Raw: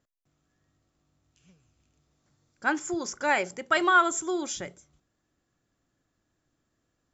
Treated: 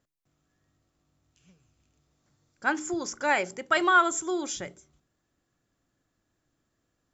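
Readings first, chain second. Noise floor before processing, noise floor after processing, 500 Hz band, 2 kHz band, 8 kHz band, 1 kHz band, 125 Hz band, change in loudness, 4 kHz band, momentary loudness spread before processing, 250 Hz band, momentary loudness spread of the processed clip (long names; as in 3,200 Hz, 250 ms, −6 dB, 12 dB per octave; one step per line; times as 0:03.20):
−78 dBFS, −78 dBFS, 0.0 dB, 0.0 dB, can't be measured, 0.0 dB, 0.0 dB, 0.0 dB, 0.0 dB, 13 LU, −0.5 dB, 13 LU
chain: hum removal 76.65 Hz, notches 5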